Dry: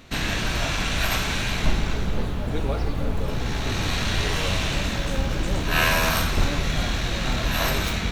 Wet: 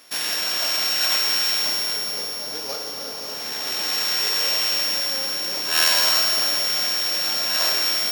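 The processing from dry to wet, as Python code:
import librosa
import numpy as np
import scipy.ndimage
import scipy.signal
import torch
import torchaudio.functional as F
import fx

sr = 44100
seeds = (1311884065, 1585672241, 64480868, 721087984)

y = np.r_[np.sort(x[:len(x) // 8 * 8].reshape(-1, 8), axis=1).ravel(), x[len(x) // 8 * 8:]]
y = scipy.signal.sosfilt(scipy.signal.butter(2, 480.0, 'highpass', fs=sr, output='sos'), y)
y = fx.high_shelf(y, sr, hz=2600.0, db=9.0)
y = fx.rev_schroeder(y, sr, rt60_s=2.9, comb_ms=26, drr_db=5.5)
y = F.gain(torch.from_numpy(y), -3.5).numpy()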